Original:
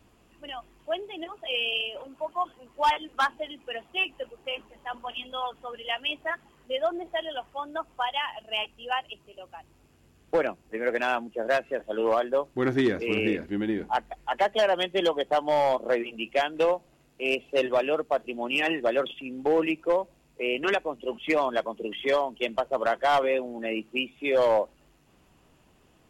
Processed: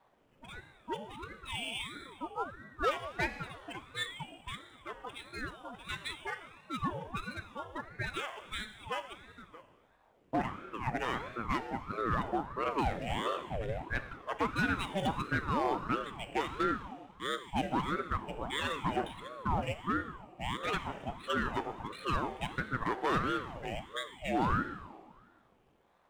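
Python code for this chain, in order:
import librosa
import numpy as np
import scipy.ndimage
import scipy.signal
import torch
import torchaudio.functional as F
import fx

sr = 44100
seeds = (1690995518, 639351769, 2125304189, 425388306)

y = scipy.signal.medfilt(x, 9)
y = fx.rev_schroeder(y, sr, rt60_s=1.6, comb_ms=26, drr_db=9.0)
y = fx.ring_lfo(y, sr, carrier_hz=530.0, swing_pct=65, hz=1.5)
y = y * librosa.db_to_amplitude(-5.5)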